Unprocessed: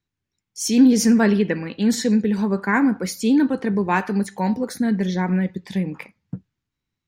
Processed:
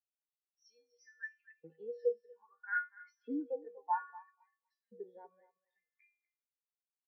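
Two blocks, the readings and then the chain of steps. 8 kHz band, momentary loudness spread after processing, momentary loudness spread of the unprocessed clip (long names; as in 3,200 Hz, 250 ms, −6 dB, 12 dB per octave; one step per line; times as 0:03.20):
below −40 dB, 18 LU, 12 LU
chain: elliptic low-pass filter 5,800 Hz
high-shelf EQ 3,500 Hz −3.5 dB
downward compressor 4 to 1, threshold −21 dBFS, peak gain reduction 9.5 dB
tuned comb filter 160 Hz, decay 0.77 s, harmonics odd, mix 90%
auto-filter high-pass saw up 0.61 Hz 360–3,000 Hz
on a send: feedback echo with a high-pass in the loop 243 ms, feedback 27%, high-pass 170 Hz, level −7.5 dB
on the sum: every bin expanded away from the loudest bin 2.5 to 1
level +4.5 dB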